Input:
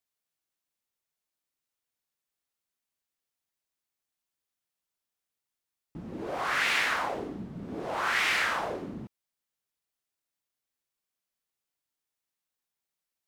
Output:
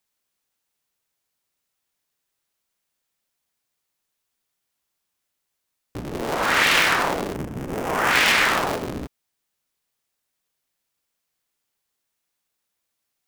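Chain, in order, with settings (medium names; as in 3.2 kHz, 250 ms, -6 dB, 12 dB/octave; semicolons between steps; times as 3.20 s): cycle switcher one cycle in 3, inverted; 7.34–8.11 s: peaking EQ 4.1 kHz -9 dB 0.56 oct; trim +9 dB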